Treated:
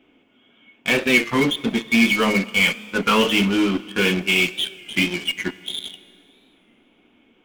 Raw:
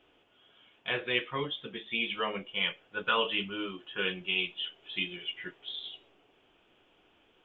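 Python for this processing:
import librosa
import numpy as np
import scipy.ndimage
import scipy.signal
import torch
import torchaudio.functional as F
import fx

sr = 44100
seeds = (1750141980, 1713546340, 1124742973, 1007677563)

p1 = fx.small_body(x, sr, hz=(240.0, 2200.0), ring_ms=45, db=17)
p2 = fx.fuzz(p1, sr, gain_db=33.0, gate_db=-39.0)
p3 = p1 + F.gain(torch.from_numpy(p2), -9.0).numpy()
p4 = fx.rev_schroeder(p3, sr, rt60_s=2.4, comb_ms=27, drr_db=17.5)
p5 = fx.record_warp(p4, sr, rpm=33.33, depth_cents=100.0)
y = F.gain(torch.from_numpy(p5), 2.5).numpy()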